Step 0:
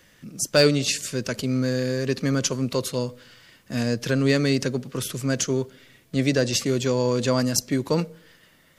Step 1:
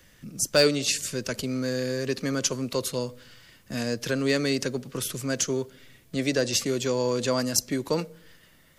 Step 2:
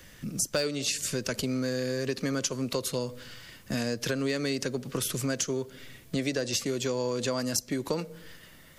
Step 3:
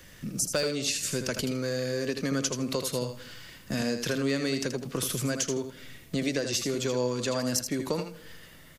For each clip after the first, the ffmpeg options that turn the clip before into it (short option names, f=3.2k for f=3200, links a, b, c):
-filter_complex "[0:a]lowshelf=f=83:g=11,acrossover=split=250[a][b];[a]acompressor=threshold=-34dB:ratio=6[c];[c][b]amix=inputs=2:normalize=0,highshelf=f=6.6k:g=4.5,volume=-2.5dB"
-af "acompressor=threshold=-32dB:ratio=5,volume=5dB"
-af "aecho=1:1:80|160|240:0.422|0.0759|0.0137"